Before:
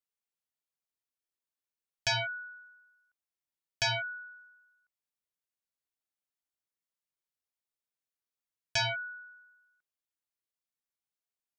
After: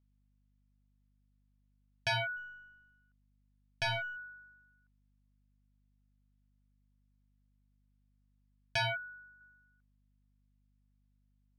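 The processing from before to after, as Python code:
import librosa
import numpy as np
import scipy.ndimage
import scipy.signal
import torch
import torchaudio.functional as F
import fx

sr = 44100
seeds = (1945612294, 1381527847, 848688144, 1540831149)

y = fx.halfwave_gain(x, sr, db=-3.0, at=(2.36, 4.15), fade=0.02)
y = fx.peak_eq(y, sr, hz=2500.0, db=-13.0, octaves=1.2, at=(8.97, 9.41))
y = np.repeat(scipy.signal.resample_poly(y, 1, 3), 3)[:len(y)]
y = fx.air_absorb(y, sr, metres=140.0)
y = fx.add_hum(y, sr, base_hz=50, snr_db=28)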